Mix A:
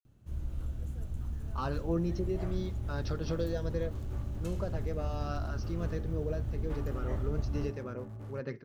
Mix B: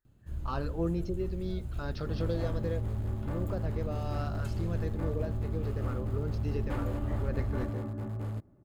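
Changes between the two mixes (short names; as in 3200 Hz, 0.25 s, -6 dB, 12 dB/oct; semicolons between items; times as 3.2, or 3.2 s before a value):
speech: entry -1.10 s; second sound +8.0 dB; master: add notch 5800 Hz, Q 6.7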